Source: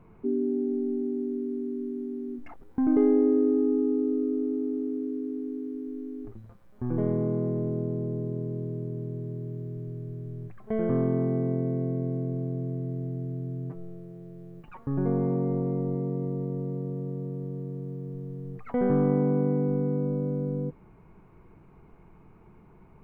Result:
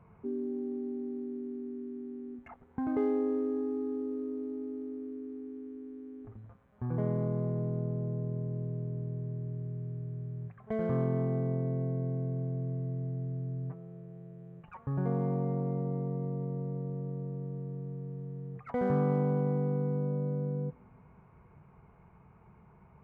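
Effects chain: local Wiener filter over 9 samples; high-pass 60 Hz; peaking EQ 310 Hz -13 dB 0.82 oct; on a send: reverberation RT60 2.9 s, pre-delay 56 ms, DRR 23 dB

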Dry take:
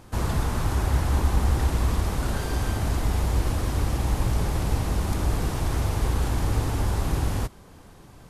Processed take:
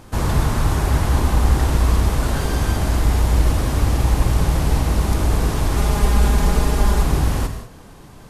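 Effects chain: 5.76–7.03 s: comb 4.9 ms, depth 75%; gated-style reverb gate 220 ms flat, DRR 6.5 dB; trim +5.5 dB

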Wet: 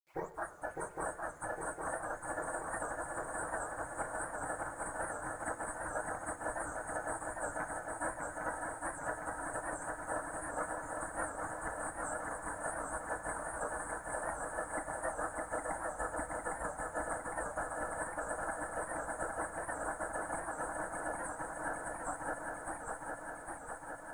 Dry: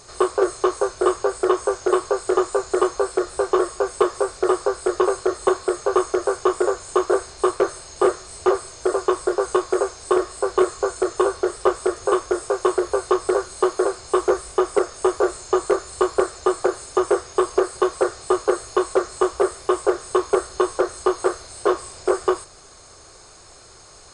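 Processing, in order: tape start-up on the opening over 0.32 s; spectral noise reduction 11 dB; Chebyshev band-stop 1.7–8.8 kHz, order 3; spectral gate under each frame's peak -25 dB weak; treble shelf 2.1 kHz -8.5 dB; compression 2:1, threshold -53 dBFS, peak gain reduction 11 dB; shuffle delay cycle 808 ms, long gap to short 3:1, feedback 72%, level -3 dB; companded quantiser 8-bit; simulated room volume 2400 m³, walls mixed, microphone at 0.61 m; warped record 78 rpm, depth 100 cents; trim +9.5 dB

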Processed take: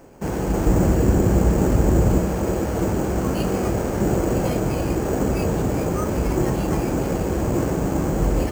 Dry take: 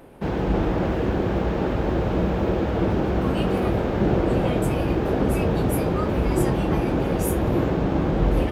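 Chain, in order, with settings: 0.66–2.18 s: bass shelf 300 Hz +9 dB; careless resampling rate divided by 6×, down filtered, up hold

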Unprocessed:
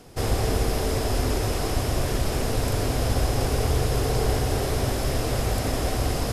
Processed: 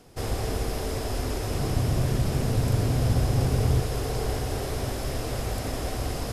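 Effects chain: 1.51–3.80 s: peaking EQ 140 Hz +11.5 dB 1.5 oct; trim -5 dB

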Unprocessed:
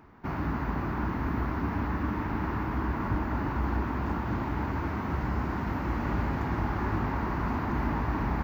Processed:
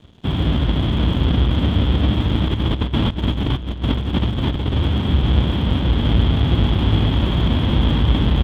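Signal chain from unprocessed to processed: square wave that keeps the level; high-pass 70 Hz 12 dB/octave; tilt EQ -3.5 dB/octave; 2.48–4.76 s: compressor with a negative ratio -19 dBFS, ratio -0.5; resonant low-pass 3.3 kHz, resonance Q 15; crossover distortion -44.5 dBFS; delay 313 ms -20 dB

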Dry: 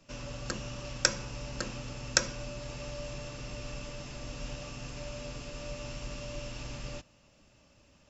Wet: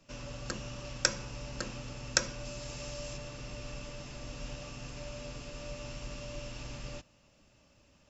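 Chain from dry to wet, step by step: 2.45–3.17 s: treble shelf 5.6 kHz +10.5 dB; trim -2 dB

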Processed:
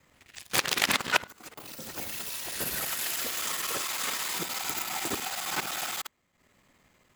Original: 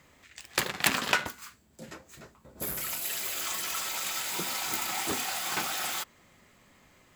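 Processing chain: time reversed locally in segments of 51 ms; ever faster or slower copies 136 ms, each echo +6 st, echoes 2; in parallel at -6.5 dB: word length cut 8-bit, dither none; on the sum: transient shaper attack +2 dB, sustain -10 dB; trim -3.5 dB

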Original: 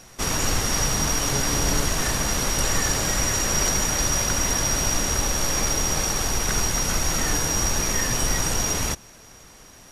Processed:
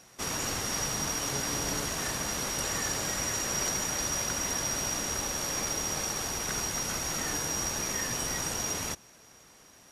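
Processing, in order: high-pass 140 Hz 6 dB/octave; trim -7.5 dB

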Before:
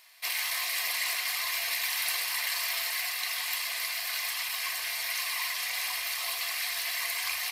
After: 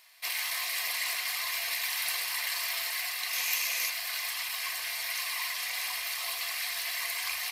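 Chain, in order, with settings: 3.33–3.90 s: graphic EQ with 31 bands 200 Hz +11 dB, 500 Hz +7 dB, 2.5 kHz +7 dB, 6.3 kHz +11 dB, 12.5 kHz +7 dB; trim -1.5 dB

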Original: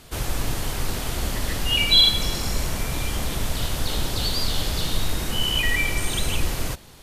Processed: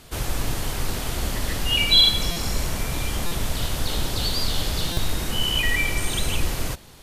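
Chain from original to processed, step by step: buffer glitch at 2.31/3.26/4.92 s, samples 256, times 8

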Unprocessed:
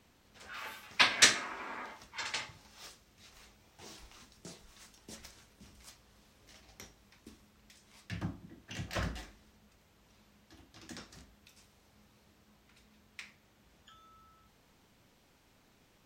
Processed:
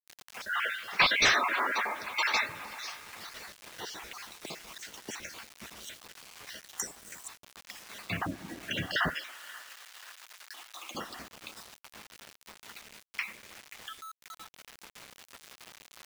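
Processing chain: random holes in the spectrogram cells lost 44%; tape echo 533 ms, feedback 51%, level -21.5 dB, low-pass 4.1 kHz; overdrive pedal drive 26 dB, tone 2.2 kHz, clips at -9.5 dBFS; 6.77–7.28 s: resonant high shelf 5.6 kHz +13 dB, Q 3; spring tank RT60 3.8 s, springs 32/57 ms, chirp 45 ms, DRR 14.5 dB; spectral gate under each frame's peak -20 dB strong; word length cut 8-bit, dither none; 9.14–10.95 s: high-pass 920 Hz 12 dB/octave; tape noise reduction on one side only encoder only; trim -1.5 dB

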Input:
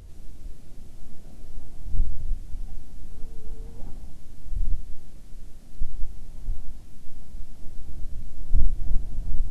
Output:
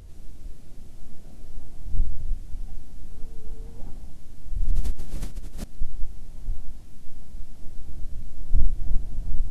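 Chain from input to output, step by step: 4.61–5.64 s: decay stretcher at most 25 dB/s

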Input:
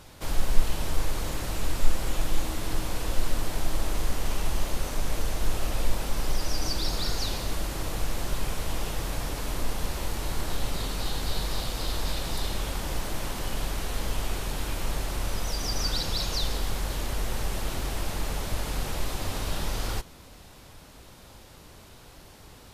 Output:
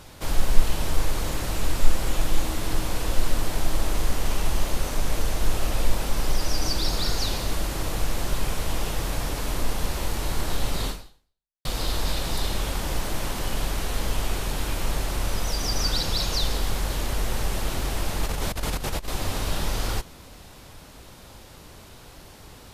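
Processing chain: 10.89–11.65 s: fade out exponential; 18.23–19.08 s: compressor with a negative ratio -30 dBFS, ratio -0.5; trim +3.5 dB

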